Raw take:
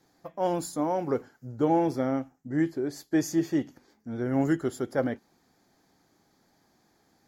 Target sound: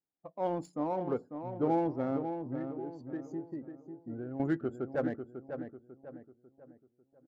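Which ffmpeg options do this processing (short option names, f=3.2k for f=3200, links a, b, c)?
-filter_complex "[0:a]asettb=1/sr,asplit=3[a][b][c];[a]atrim=end=2.174[d];[b]atrim=start=2.17:end=4.4,asetpts=PTS-STARTPTS,afade=t=in:d=0.004:c=qsin,afade=t=out:st=2.226:d=0.004:c=qsin,acompressor=threshold=-31dB:ratio=12[e];[c]atrim=start=4.396[f];[d][e]acrossfade=d=0.004:c1=hsin:c2=qsin[g];[g][f]acrossfade=d=0.004:c1=qsin:c2=hsin,afftdn=nr=27:nf=-42,asplit=2[h][i];[i]adelay=546,lowpass=f=2k:p=1,volume=-7.5dB,asplit=2[j][k];[k]adelay=546,lowpass=f=2k:p=1,volume=0.41,asplit=2[l][m];[m]adelay=546,lowpass=f=2k:p=1,volume=0.41,asplit=2[n][o];[o]adelay=546,lowpass=f=2k:p=1,volume=0.41,asplit=2[p][q];[q]adelay=546,lowpass=f=2k:p=1,volume=0.41[r];[h][j][l][n][p][r]amix=inputs=6:normalize=0,adynamicsmooth=sensitivity=8:basefreq=2.3k,volume=-5.5dB"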